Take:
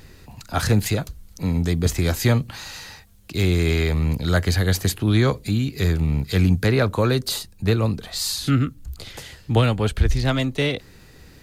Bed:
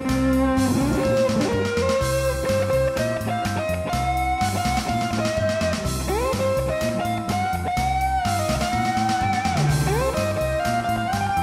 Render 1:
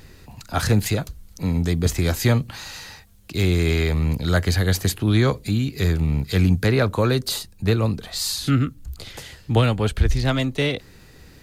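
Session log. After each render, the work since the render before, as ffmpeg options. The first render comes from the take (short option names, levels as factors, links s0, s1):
-af anull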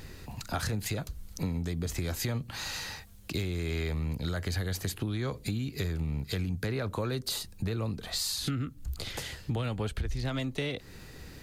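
-af "alimiter=limit=0.237:level=0:latency=1:release=45,acompressor=threshold=0.0316:ratio=5"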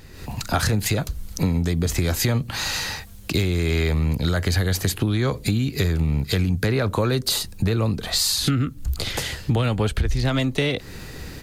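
-af "dynaudnorm=f=120:g=3:m=3.55"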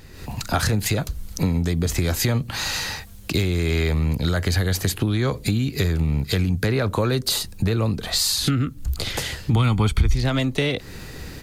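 -filter_complex "[0:a]asettb=1/sr,asplit=3[s0][s1][s2];[s0]atrim=end=9.534[s3];[s1]atrim=start=9.53:end=10.15,asetpts=PTS-STARTPTS,afade=t=in:d=0.004:c=qsin,afade=t=out:st=0.616:d=0.004:c=qsin,aecho=1:1:0.9:0.65,atrim=end_sample=27342[s4];[s2]atrim=start=10.146[s5];[s3][s4]acrossfade=d=0.004:c1=hsin:c2=qsin[s6];[s6][s5]acrossfade=d=0.004:c1=qsin:c2=hsin"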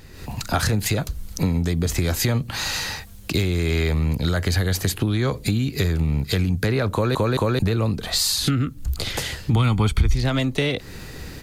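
-filter_complex "[0:a]asplit=4[s0][s1][s2][s3];[s0]atrim=end=7.152[s4];[s1]atrim=start=6.928:end=7.152[s5];[s2]atrim=start=6.928:end=7.152[s6];[s3]atrim=start=7.588[s7];[s4][s5]acrossfade=d=0.004:c1=hsin:c2=hsin[s8];[s8][s6]acrossfade=d=0.004:c1=hsin:c2=hsin[s9];[s9][s7]acrossfade=d=0.004:c1=hsin:c2=hsin"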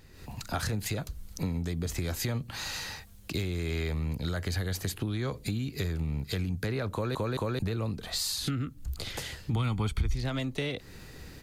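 -af "volume=0.299"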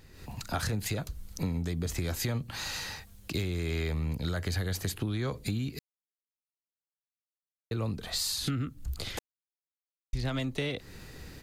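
-filter_complex "[0:a]asplit=5[s0][s1][s2][s3][s4];[s0]atrim=end=5.79,asetpts=PTS-STARTPTS,afade=t=out:st=5.786:d=0.004:c=hsin[s5];[s1]atrim=start=5.79:end=7.71,asetpts=PTS-STARTPTS,volume=0[s6];[s2]atrim=start=7.71:end=9.19,asetpts=PTS-STARTPTS,afade=t=in:d=0.004:c=hsin,afade=t=out:st=1.476:d=0.004:c=hsin[s7];[s3]atrim=start=9.19:end=10.13,asetpts=PTS-STARTPTS,volume=0[s8];[s4]atrim=start=10.13,asetpts=PTS-STARTPTS,afade=t=in:d=0.004:c=hsin[s9];[s5][s6][s7][s8][s9]concat=n=5:v=0:a=1"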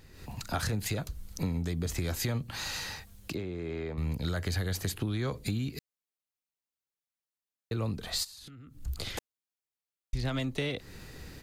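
-filter_complex "[0:a]asettb=1/sr,asplit=3[s0][s1][s2];[s0]atrim=end=3.344[s3];[s1]atrim=start=3.34:end=3.98,asetpts=PTS-STARTPTS,afade=t=in:d=0.004:c=qsin,afade=t=out:st=0.636:d=0.004:c=qsin,bandpass=f=480:t=q:w=0.54[s4];[s2]atrim=start=3.976[s5];[s3][s4]acrossfade=d=0.004:c1=hsin:c2=qsin[s6];[s6][s5]acrossfade=d=0.004:c1=qsin:c2=hsin,asplit=3[s7][s8][s9];[s7]afade=t=out:st=8.23:d=0.02[s10];[s8]acompressor=threshold=0.00562:ratio=20:attack=3.2:release=140:knee=1:detection=peak,afade=t=in:st=8.23:d=0.02,afade=t=out:st=8.79:d=0.02[s11];[s9]afade=t=in:st=8.79:d=0.02[s12];[s10][s11][s12]amix=inputs=3:normalize=0"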